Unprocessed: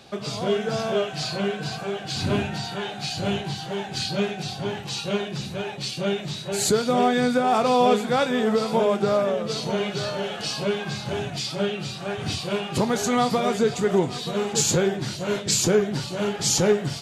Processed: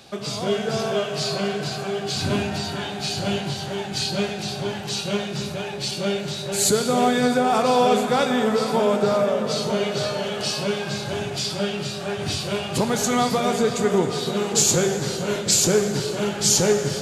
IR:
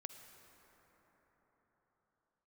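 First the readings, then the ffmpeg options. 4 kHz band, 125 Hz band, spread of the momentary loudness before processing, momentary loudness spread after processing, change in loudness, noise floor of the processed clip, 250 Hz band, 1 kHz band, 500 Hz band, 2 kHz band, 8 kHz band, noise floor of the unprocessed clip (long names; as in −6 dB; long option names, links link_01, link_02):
+3.0 dB, +1.0 dB, 9 LU, 9 LU, +2.0 dB, −31 dBFS, +1.0 dB, +1.0 dB, +1.0 dB, +1.5 dB, +5.0 dB, −35 dBFS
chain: -filter_complex "[0:a]highshelf=frequency=5600:gain=7[link_01];[1:a]atrim=start_sample=2205[link_02];[link_01][link_02]afir=irnorm=-1:irlink=0,volume=5.5dB"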